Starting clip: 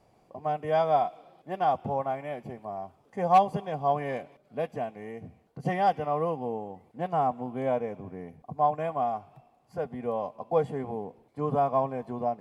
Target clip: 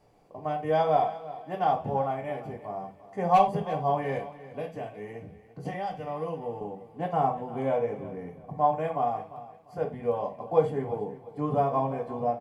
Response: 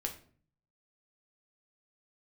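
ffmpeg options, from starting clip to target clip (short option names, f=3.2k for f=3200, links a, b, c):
-filter_complex "[0:a]asettb=1/sr,asplit=3[a][b][c];[a]atrim=end=4.174[d];[b]atrim=start=4.17:end=6.61,asetpts=PTS-STARTPTS,afade=t=in:d=0.004:c=qsin,afade=t=out:st=2.436:d=0.004:c=qsin,acrossover=split=170|2100[e][f][g];[e]acompressor=threshold=-46dB:ratio=4[h];[f]acompressor=threshold=-34dB:ratio=4[i];[g]acompressor=threshold=-50dB:ratio=4[j];[h][i][j]amix=inputs=3:normalize=0[k];[c]atrim=start=6.606[l];[d][k]acrossfade=d=0.004:c1=hsin:c2=qsin[m];[m][l]acrossfade=d=0.004:c1=qsin:c2=hsin,aecho=1:1:347|694|1041:0.158|0.046|0.0133[n];[1:a]atrim=start_sample=2205,atrim=end_sample=4410[o];[n][o]afir=irnorm=-1:irlink=0"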